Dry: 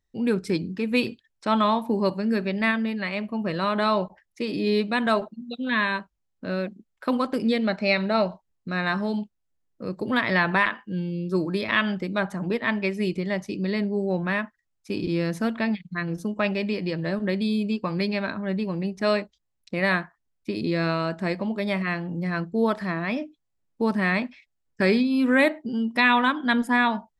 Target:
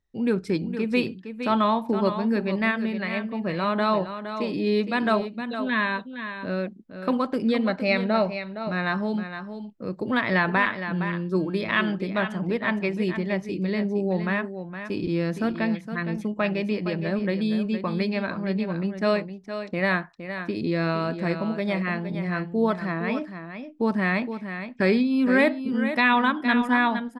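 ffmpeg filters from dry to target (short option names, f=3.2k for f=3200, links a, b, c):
-af "highshelf=f=4.8k:g=-8.5,aecho=1:1:464:0.335"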